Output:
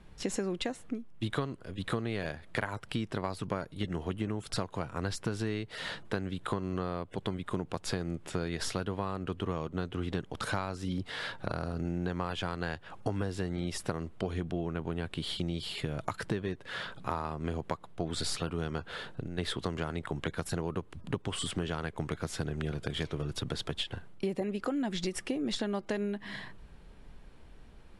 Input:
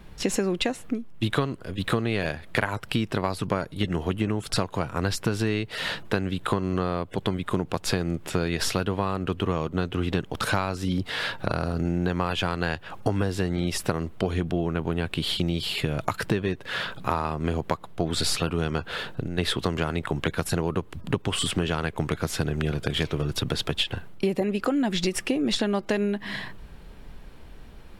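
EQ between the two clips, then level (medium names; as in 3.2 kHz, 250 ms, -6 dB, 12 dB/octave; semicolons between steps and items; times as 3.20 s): Chebyshev low-pass 11 kHz, order 5; dynamic bell 2.6 kHz, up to -5 dB, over -49 dBFS, Q 7.6; -8.0 dB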